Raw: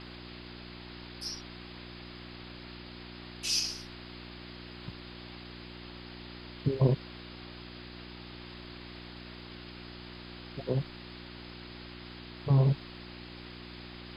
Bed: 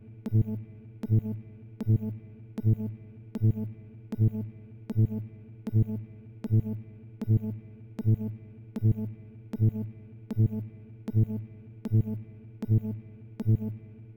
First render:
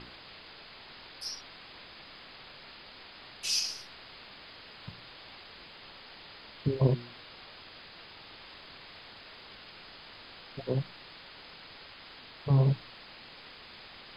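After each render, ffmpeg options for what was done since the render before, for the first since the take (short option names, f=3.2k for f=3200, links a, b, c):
-af "bandreject=f=60:t=h:w=4,bandreject=f=120:t=h:w=4,bandreject=f=180:t=h:w=4,bandreject=f=240:t=h:w=4,bandreject=f=300:t=h:w=4,bandreject=f=360:t=h:w=4"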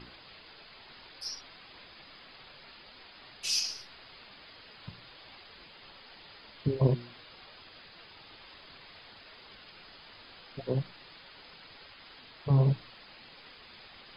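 -af "afftdn=nr=6:nf=-51"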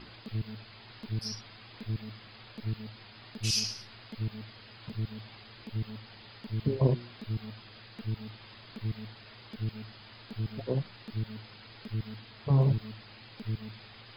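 -filter_complex "[1:a]volume=-10dB[a];[0:a][a]amix=inputs=2:normalize=0"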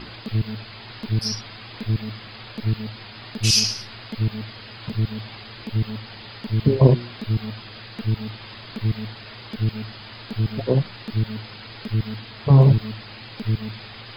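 -af "volume=11.5dB"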